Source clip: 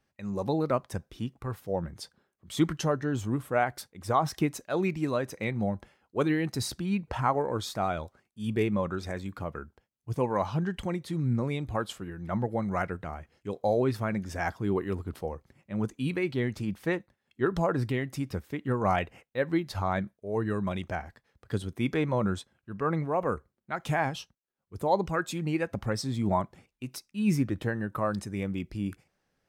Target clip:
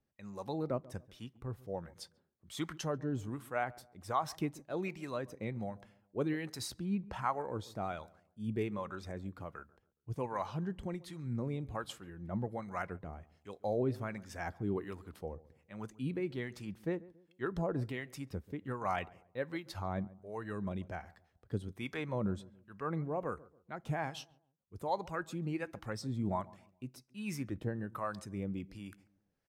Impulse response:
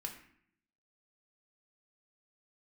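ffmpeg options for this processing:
-filter_complex "[0:a]acrossover=split=670[a][b];[a]aeval=exprs='val(0)*(1-0.7/2+0.7/2*cos(2*PI*1.3*n/s))':c=same[c];[b]aeval=exprs='val(0)*(1-0.7/2-0.7/2*cos(2*PI*1.3*n/s))':c=same[d];[c][d]amix=inputs=2:normalize=0,asplit=2[e][f];[f]adelay=139,lowpass=f=840:p=1,volume=-19dB,asplit=2[g][h];[h]adelay=139,lowpass=f=840:p=1,volume=0.39,asplit=2[i][j];[j]adelay=139,lowpass=f=840:p=1,volume=0.39[k];[e][g][i][k]amix=inputs=4:normalize=0,volume=-5.5dB"

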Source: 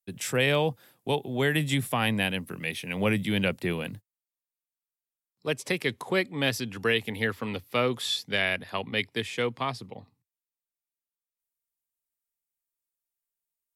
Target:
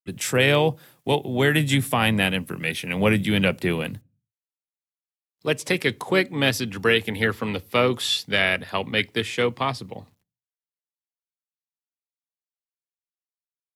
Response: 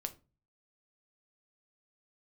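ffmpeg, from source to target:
-filter_complex "[0:a]acrusher=bits=11:mix=0:aa=0.000001,asplit=2[a][b];[b]asetrate=35002,aresample=44100,atempo=1.25992,volume=-15dB[c];[a][c]amix=inputs=2:normalize=0,asplit=2[d][e];[1:a]atrim=start_sample=2205,afade=t=out:st=0.38:d=0.01,atrim=end_sample=17199[f];[e][f]afir=irnorm=-1:irlink=0,volume=-12.5dB[g];[d][g]amix=inputs=2:normalize=0,volume=4dB"

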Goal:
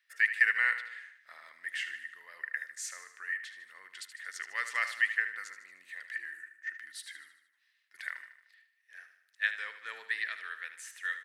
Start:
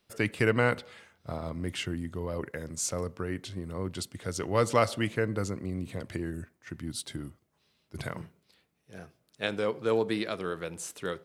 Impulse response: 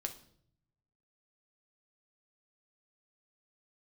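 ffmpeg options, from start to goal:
-af "highpass=f=1.8k:t=q:w=14,aecho=1:1:76|152|228|304|380|456:0.282|0.147|0.0762|0.0396|0.0206|0.0107,volume=-8.5dB"

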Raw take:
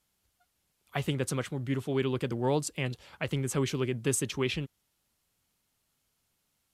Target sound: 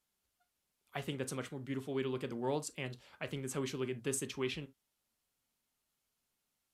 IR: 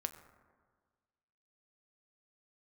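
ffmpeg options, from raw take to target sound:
-filter_complex "[0:a]equalizer=f=85:w=1.1:g=-8.5[a];[1:a]atrim=start_sample=2205,atrim=end_sample=3528[b];[a][b]afir=irnorm=-1:irlink=0,volume=-6dB"

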